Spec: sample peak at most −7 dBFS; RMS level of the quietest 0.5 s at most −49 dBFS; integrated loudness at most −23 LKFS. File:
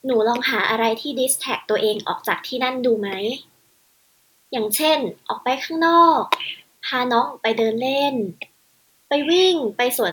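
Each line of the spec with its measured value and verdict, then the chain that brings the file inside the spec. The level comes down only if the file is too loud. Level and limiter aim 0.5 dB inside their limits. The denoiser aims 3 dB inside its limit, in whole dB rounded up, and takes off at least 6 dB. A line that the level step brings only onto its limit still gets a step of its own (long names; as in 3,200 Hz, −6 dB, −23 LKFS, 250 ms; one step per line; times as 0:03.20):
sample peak −2.5 dBFS: out of spec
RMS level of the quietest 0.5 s −60 dBFS: in spec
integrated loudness −20.0 LKFS: out of spec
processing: level −3.5 dB
brickwall limiter −7.5 dBFS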